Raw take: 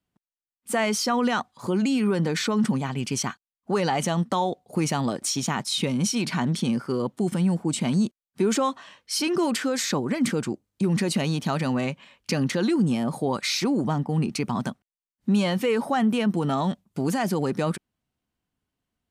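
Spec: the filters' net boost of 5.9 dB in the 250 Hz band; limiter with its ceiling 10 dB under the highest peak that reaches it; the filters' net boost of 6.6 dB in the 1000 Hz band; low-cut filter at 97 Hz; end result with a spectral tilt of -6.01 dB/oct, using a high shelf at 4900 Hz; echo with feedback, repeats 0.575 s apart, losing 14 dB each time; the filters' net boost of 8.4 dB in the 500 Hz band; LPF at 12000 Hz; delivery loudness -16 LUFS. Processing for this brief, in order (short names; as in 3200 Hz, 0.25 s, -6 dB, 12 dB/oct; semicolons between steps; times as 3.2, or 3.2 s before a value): HPF 97 Hz; LPF 12000 Hz; bell 250 Hz +5.5 dB; bell 500 Hz +7.5 dB; bell 1000 Hz +5.5 dB; high shelf 4900 Hz -4.5 dB; limiter -13 dBFS; feedback echo 0.575 s, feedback 20%, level -14 dB; gain +6 dB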